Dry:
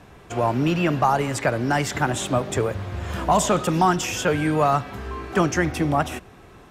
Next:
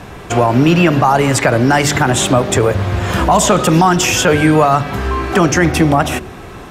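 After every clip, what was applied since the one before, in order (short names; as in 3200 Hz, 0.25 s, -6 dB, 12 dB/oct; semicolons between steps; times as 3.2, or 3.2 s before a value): de-hum 73.64 Hz, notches 9; in parallel at -1.5 dB: compressor, threshold -29 dBFS, peak gain reduction 14.5 dB; on the sum: maximiser +11 dB; gain -1 dB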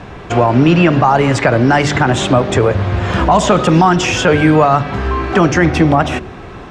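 air absorption 110 m; gain +1 dB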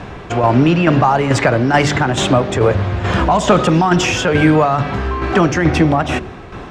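tremolo saw down 2.3 Hz, depth 55%; in parallel at -10.5 dB: soft clip -19 dBFS, distortion -6 dB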